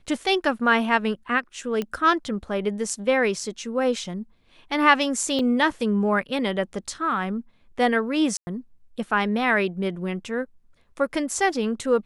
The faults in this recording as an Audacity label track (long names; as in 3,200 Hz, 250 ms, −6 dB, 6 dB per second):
1.820000	1.820000	click −15 dBFS
5.390000	5.390000	drop-out 3 ms
8.370000	8.470000	drop-out 100 ms